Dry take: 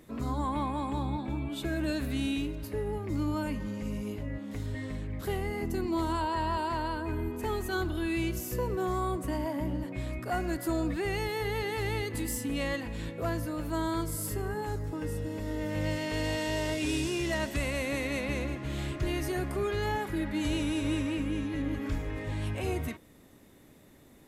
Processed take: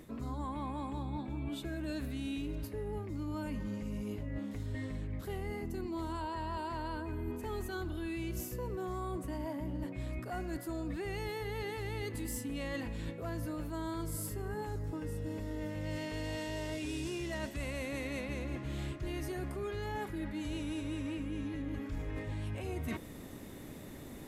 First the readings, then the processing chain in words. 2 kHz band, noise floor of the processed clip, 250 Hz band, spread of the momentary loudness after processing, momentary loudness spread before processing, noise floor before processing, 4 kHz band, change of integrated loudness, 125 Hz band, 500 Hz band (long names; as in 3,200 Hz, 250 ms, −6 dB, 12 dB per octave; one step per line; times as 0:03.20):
−8.0 dB, −47 dBFS, −6.5 dB, 2 LU, 5 LU, −55 dBFS, −8.5 dB, −7.0 dB, −5.0 dB, −7.0 dB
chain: low-shelf EQ 380 Hz +3 dB
reversed playback
downward compressor 12 to 1, threshold −43 dBFS, peak gain reduction 19.5 dB
reversed playback
level +7.5 dB